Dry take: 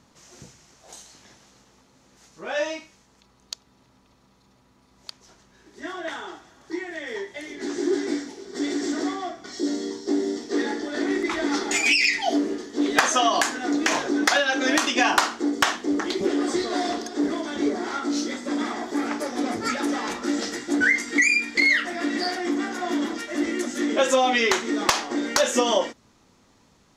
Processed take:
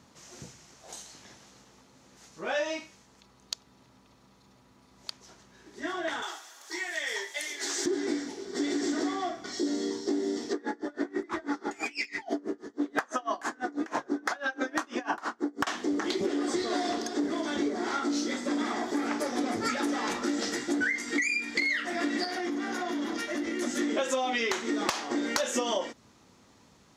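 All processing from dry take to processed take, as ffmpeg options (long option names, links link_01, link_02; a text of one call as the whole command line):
ffmpeg -i in.wav -filter_complex "[0:a]asettb=1/sr,asplit=3[link_01][link_02][link_03];[link_01]atrim=end=6.224[link_04];[link_02]atrim=start=6.22:end=7.86,asetpts=PTS-STARTPTS,afade=type=in:duration=0.004:curve=qsin,afade=type=out:start_time=1.636:duration=0.004:curve=qsin,highpass=670,aemphasis=mode=production:type=75kf[link_05];[link_03]atrim=start=7.856[link_06];[link_04][link_05]acrossfade=duration=0.004:curve1=hsin:curve2=qsin[link_07];[link_07][link_06]acrossfade=duration=0.004:curve1=qsin:curve2=hsin,asettb=1/sr,asplit=3[link_08][link_09][link_10];[link_08]atrim=end=10.534[link_11];[link_09]atrim=start=10.53:end=15.67,asetpts=PTS-STARTPTS,afade=type=in:duration=0.004:curve=qsin,afade=type=out:start_time=5.136:duration=0.004:curve=qsin,highshelf=frequency=2000:width_type=q:width=1.5:gain=-7.5,aeval=exprs='val(0)*pow(10,-28*(0.5-0.5*cos(2*PI*6.1*n/s))/20)':channel_layout=same[link_12];[link_10]atrim=start=15.666[link_13];[link_11][link_12]acrossfade=duration=0.004:curve1=hsin:curve2=qsin[link_14];[link_14][link_13]acrossfade=duration=0.004:curve1=qsin:curve2=hsin,asettb=1/sr,asplit=3[link_15][link_16][link_17];[link_15]atrim=end=22.244[link_18];[link_16]atrim=start=22.24:end=23.62,asetpts=PTS-STARTPTS,afade=type=in:duration=0.004:curve=qsin,afade=type=out:start_time=1.376:duration=0.004:curve=qsin,bandreject=frequency=7700:width=7,acompressor=threshold=-28dB:ratio=6:attack=3.2:release=140:knee=1:detection=peak[link_19];[link_17]atrim=start=23.616[link_20];[link_18][link_19]acrossfade=duration=0.004:curve1=hsin:curve2=qsin[link_21];[link_21][link_20]acrossfade=duration=0.004:curve1=qsin:curve2=hsin,highpass=59,acompressor=threshold=-26dB:ratio=6" out.wav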